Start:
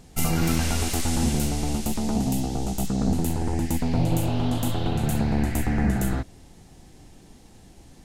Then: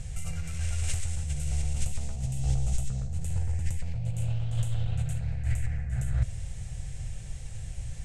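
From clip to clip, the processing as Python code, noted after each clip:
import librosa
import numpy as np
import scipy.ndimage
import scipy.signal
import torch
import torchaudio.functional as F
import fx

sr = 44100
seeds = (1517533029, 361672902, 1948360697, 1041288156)

y = fx.over_compress(x, sr, threshold_db=-32.0, ratio=-1.0)
y = fx.curve_eq(y, sr, hz=(130.0, 240.0, 370.0, 530.0, 910.0, 1600.0, 2400.0, 4600.0, 8200.0, 15000.0), db=(0, -29, -27, -12, -21, -11, -8, -15, -4, -30))
y = F.gain(torch.from_numpy(y), 7.0).numpy()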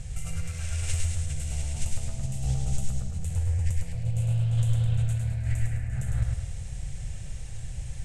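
y = fx.echo_feedback(x, sr, ms=105, feedback_pct=42, wet_db=-4.0)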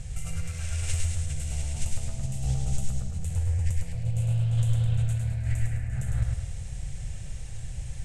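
y = x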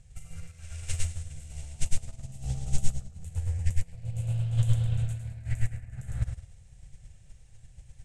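y = fx.upward_expand(x, sr, threshold_db=-33.0, expansion=2.5)
y = F.gain(torch.from_numpy(y), 6.0).numpy()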